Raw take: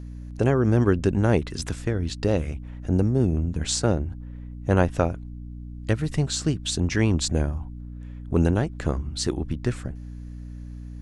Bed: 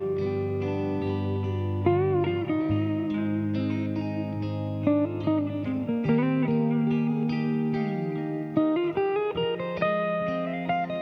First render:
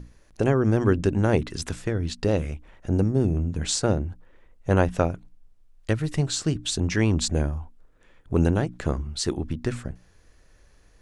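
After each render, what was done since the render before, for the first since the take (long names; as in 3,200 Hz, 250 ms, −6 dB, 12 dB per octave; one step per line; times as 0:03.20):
mains-hum notches 60/120/180/240/300 Hz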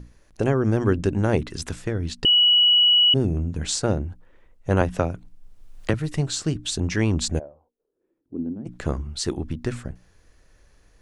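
0:02.25–0:03.14: beep over 2,930 Hz −13 dBFS
0:04.81–0:05.94: multiband upward and downward compressor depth 70%
0:07.38–0:08.65: resonant band-pass 620 Hz → 220 Hz, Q 6.2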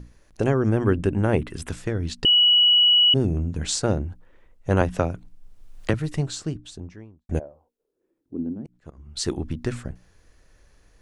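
0:00.69–0:01.69: flat-topped bell 5,200 Hz −9 dB 1.1 octaves
0:05.90–0:07.29: fade out and dull
0:08.54–0:09.17: volume swells 582 ms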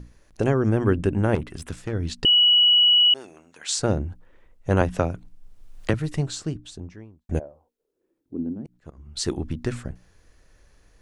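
0:01.35–0:01.93: tube saturation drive 21 dB, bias 0.6
0:02.98–0:03.79: high-pass filter 1,000 Hz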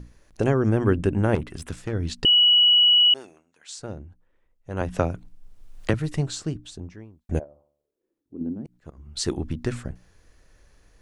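0:03.18–0:04.99: duck −13 dB, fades 0.26 s
0:07.44–0:08.41: tuned comb filter 73 Hz, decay 0.65 s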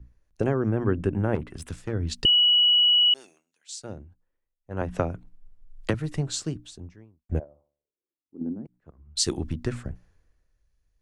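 downward compressor 2.5 to 1, threshold −25 dBFS, peak gain reduction 7.5 dB
multiband upward and downward expander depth 70%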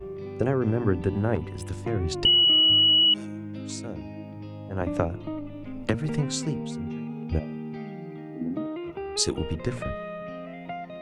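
mix in bed −9 dB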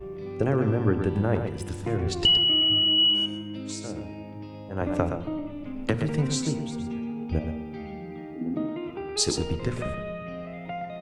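single-tap delay 120 ms −7.5 dB
rectangular room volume 1,300 cubic metres, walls mixed, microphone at 0.4 metres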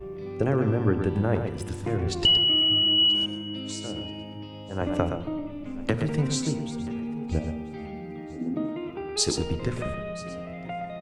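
repeating echo 982 ms, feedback 30%, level −21 dB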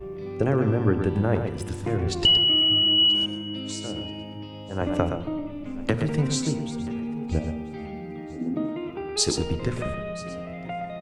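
level +1.5 dB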